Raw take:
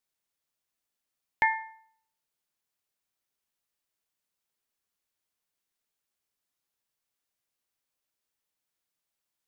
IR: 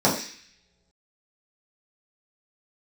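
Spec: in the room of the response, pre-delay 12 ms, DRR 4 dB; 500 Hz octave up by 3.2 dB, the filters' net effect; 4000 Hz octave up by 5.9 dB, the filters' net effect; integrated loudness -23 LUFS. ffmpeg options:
-filter_complex "[0:a]equalizer=f=500:t=o:g=4,equalizer=f=4k:t=o:g=8,asplit=2[a][b];[1:a]atrim=start_sample=2205,adelay=12[c];[b][c]afir=irnorm=-1:irlink=0,volume=-22dB[d];[a][d]amix=inputs=2:normalize=0,volume=4.5dB"

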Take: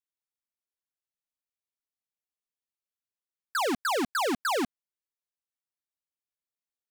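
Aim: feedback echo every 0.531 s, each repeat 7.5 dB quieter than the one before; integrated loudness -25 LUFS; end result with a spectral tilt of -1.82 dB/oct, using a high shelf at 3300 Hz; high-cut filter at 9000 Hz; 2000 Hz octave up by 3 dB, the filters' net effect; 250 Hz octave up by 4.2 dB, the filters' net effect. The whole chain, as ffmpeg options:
-af "lowpass=9k,equalizer=f=250:t=o:g=5,equalizer=f=2k:t=o:g=6,highshelf=f=3.3k:g=-6.5,aecho=1:1:531|1062|1593|2124|2655:0.422|0.177|0.0744|0.0312|0.0131,volume=2.5dB"

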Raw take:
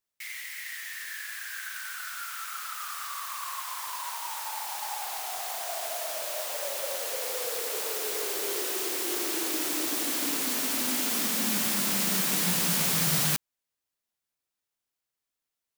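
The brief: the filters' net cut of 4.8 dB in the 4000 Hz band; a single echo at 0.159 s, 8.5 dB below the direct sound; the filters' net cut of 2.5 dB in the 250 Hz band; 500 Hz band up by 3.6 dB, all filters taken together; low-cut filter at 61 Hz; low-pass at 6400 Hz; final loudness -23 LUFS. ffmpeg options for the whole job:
-af "highpass=61,lowpass=6.4k,equalizer=f=250:t=o:g=-5.5,equalizer=f=500:t=o:g=6,equalizer=f=4k:t=o:g=-5.5,aecho=1:1:159:0.376,volume=10.5dB"

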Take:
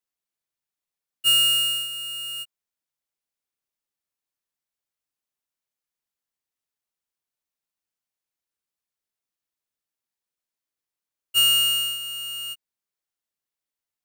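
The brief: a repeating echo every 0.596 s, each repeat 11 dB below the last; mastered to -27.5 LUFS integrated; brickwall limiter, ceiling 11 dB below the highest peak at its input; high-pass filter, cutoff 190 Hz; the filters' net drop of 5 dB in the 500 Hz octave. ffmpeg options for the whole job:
-af "highpass=190,equalizer=f=500:t=o:g=-5.5,alimiter=level_in=1dB:limit=-24dB:level=0:latency=1,volume=-1dB,aecho=1:1:596|1192|1788:0.282|0.0789|0.0221,volume=0.5dB"

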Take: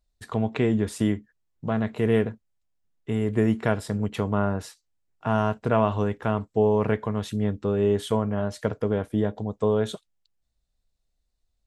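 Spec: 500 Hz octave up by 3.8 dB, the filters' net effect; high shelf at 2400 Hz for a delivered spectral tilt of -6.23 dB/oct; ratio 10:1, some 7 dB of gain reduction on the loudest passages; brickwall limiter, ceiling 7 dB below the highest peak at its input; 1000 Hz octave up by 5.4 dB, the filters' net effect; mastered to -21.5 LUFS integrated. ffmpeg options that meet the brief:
-af "equalizer=f=500:t=o:g=3.5,equalizer=f=1k:t=o:g=7,highshelf=f=2.4k:g=-8,acompressor=threshold=-20dB:ratio=10,volume=7dB,alimiter=limit=-8dB:level=0:latency=1"

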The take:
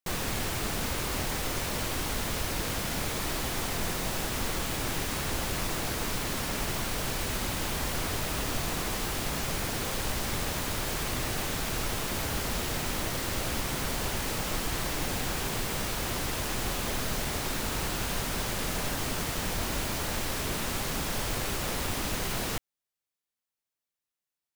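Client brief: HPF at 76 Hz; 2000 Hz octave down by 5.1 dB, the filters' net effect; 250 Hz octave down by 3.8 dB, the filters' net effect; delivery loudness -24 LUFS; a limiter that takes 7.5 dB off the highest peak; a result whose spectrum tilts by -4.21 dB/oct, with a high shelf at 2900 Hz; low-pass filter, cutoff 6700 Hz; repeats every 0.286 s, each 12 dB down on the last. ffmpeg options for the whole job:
-af "highpass=76,lowpass=6.7k,equalizer=f=250:t=o:g=-5,equalizer=f=2k:t=o:g=-3.5,highshelf=f=2.9k:g=-7.5,alimiter=level_in=6.5dB:limit=-24dB:level=0:latency=1,volume=-6.5dB,aecho=1:1:286|572|858:0.251|0.0628|0.0157,volume=15dB"

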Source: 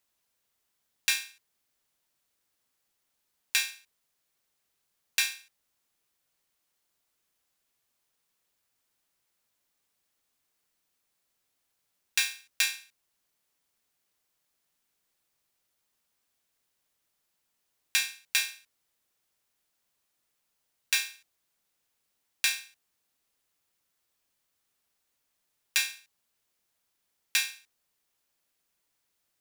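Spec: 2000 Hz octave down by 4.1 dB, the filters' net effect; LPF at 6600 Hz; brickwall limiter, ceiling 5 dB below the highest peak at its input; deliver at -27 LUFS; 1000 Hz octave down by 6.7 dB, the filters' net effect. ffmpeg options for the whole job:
-af "lowpass=6.6k,equalizer=f=1k:t=o:g=-7.5,equalizer=f=2k:t=o:g=-4,volume=8dB,alimiter=limit=-8.5dB:level=0:latency=1"

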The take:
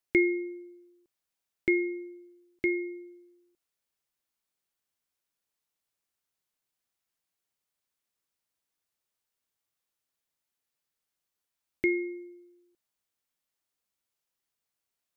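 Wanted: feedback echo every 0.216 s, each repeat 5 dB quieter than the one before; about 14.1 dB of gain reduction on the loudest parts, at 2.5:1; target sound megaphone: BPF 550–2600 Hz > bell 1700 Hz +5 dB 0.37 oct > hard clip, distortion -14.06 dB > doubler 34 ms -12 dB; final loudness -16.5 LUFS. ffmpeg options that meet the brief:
-filter_complex "[0:a]acompressor=threshold=-41dB:ratio=2.5,highpass=550,lowpass=2.6k,equalizer=f=1.7k:t=o:w=0.37:g=5,aecho=1:1:216|432|648|864|1080|1296|1512:0.562|0.315|0.176|0.0988|0.0553|0.031|0.0173,asoftclip=type=hard:threshold=-36.5dB,asplit=2[a][b];[b]adelay=34,volume=-12dB[c];[a][c]amix=inputs=2:normalize=0,volume=29.5dB"

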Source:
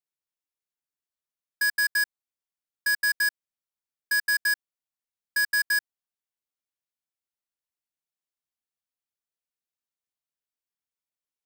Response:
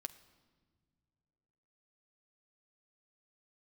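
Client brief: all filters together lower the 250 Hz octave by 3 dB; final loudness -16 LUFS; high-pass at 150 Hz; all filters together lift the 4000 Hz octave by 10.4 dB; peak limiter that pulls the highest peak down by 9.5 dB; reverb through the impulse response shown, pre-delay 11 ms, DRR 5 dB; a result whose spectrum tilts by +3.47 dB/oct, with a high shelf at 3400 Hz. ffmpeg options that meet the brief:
-filter_complex "[0:a]highpass=150,equalizer=f=250:t=o:g=-4,highshelf=f=3.4k:g=8,equalizer=f=4k:t=o:g=7,alimiter=limit=-20dB:level=0:latency=1,asplit=2[a][b];[1:a]atrim=start_sample=2205,adelay=11[c];[b][c]afir=irnorm=-1:irlink=0,volume=-1.5dB[d];[a][d]amix=inputs=2:normalize=0,volume=12.5dB"

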